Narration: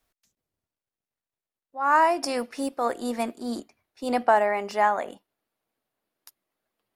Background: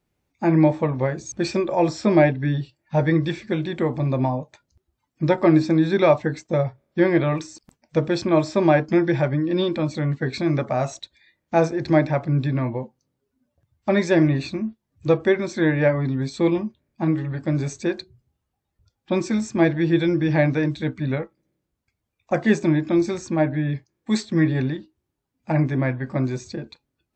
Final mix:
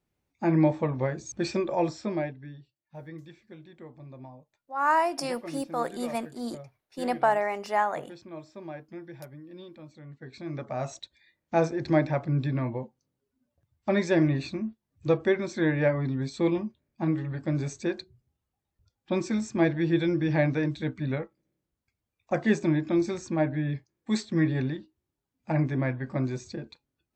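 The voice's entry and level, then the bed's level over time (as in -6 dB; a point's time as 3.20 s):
2.95 s, -3.5 dB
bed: 1.76 s -5.5 dB
2.61 s -23.5 dB
10.03 s -23.5 dB
10.98 s -5.5 dB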